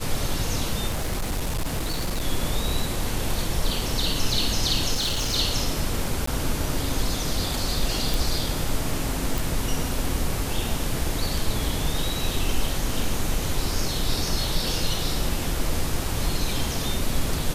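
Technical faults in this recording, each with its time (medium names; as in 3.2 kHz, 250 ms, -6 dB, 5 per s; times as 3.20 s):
0.88–2.25 s: clipped -22 dBFS
4.94–5.36 s: clipped -21 dBFS
6.26–6.27 s: dropout 14 ms
8.14 s: pop
9.38 s: pop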